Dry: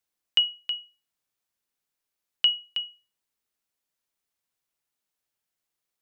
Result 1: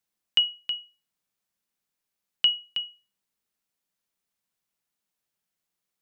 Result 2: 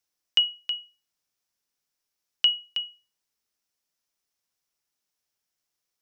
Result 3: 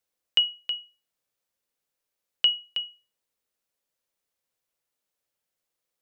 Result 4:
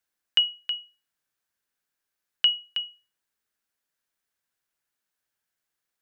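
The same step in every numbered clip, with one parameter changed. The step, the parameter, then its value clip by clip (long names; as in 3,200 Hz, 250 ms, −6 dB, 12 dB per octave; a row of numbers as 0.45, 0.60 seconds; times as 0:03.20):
parametric band, centre frequency: 190, 5,500, 520, 1,600 Hertz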